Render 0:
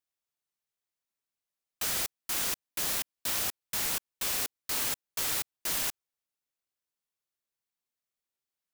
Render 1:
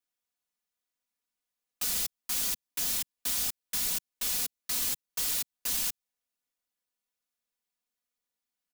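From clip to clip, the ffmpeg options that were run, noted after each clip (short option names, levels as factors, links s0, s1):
-filter_complex "[0:a]aecho=1:1:4.1:0.97,acrossover=split=210|3000[s0][s1][s2];[s1]acompressor=threshold=0.00562:ratio=4[s3];[s0][s3][s2]amix=inputs=3:normalize=0,volume=0.841"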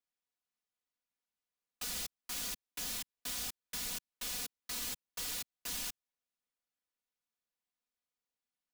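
-af "highshelf=f=6700:g=-8,volume=0.631"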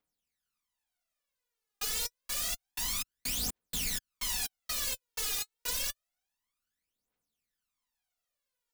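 -af "aphaser=in_gain=1:out_gain=1:delay=2.5:decay=0.75:speed=0.28:type=triangular,volume=1.26"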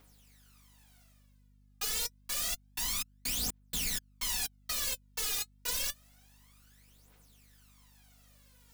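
-af "areverse,acompressor=mode=upward:threshold=0.00501:ratio=2.5,areverse,aeval=exprs='val(0)+0.000794*(sin(2*PI*50*n/s)+sin(2*PI*2*50*n/s)/2+sin(2*PI*3*50*n/s)/3+sin(2*PI*4*50*n/s)/4+sin(2*PI*5*50*n/s)/5)':c=same"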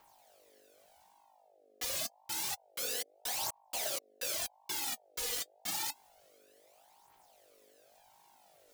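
-af "aeval=exprs='val(0)*sin(2*PI*680*n/s+680*0.3/0.85*sin(2*PI*0.85*n/s))':c=same"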